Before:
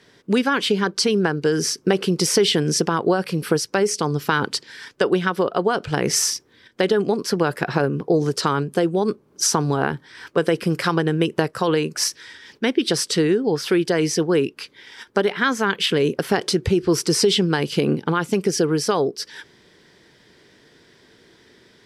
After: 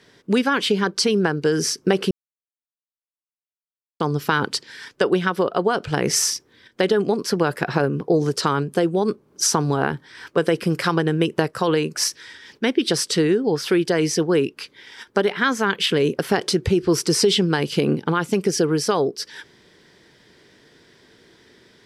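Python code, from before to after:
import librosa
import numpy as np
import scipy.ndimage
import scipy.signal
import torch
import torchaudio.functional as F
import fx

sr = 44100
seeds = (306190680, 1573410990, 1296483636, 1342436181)

y = fx.edit(x, sr, fx.silence(start_s=2.11, length_s=1.89), tone=tone)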